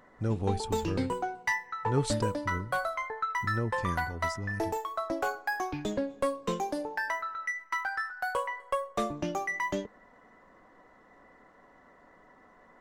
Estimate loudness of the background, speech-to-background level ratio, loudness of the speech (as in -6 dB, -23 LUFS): -33.0 LUFS, -2.5 dB, -35.5 LUFS